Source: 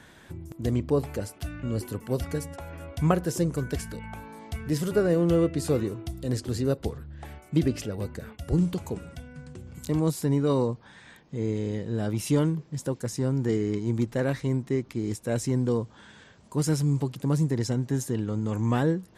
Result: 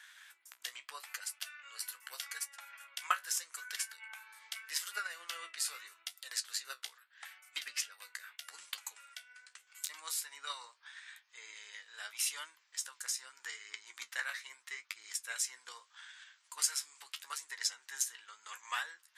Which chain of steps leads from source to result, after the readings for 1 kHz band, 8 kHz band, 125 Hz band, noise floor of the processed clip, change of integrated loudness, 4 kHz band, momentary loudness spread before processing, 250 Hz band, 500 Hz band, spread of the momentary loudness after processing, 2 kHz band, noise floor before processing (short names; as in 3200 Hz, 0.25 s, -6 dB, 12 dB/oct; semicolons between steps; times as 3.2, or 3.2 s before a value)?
-7.0 dB, +3.0 dB, under -40 dB, -71 dBFS, -12.0 dB, +2.5 dB, 15 LU, under -40 dB, -35.5 dB, 16 LU, 0.0 dB, -53 dBFS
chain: HPF 1400 Hz 24 dB/oct; transient shaper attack +6 dB, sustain -3 dB; flange 0.8 Hz, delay 9.1 ms, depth 7.8 ms, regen +50%; gain +3.5 dB